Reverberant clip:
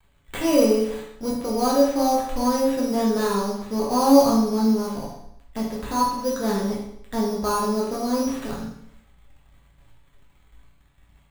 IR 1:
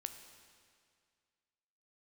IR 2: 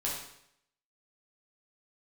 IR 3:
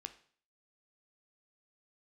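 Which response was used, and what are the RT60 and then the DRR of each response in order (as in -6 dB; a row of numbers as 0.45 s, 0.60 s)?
2; 2.1 s, 0.75 s, 0.50 s; 7.5 dB, -5.5 dB, 8.5 dB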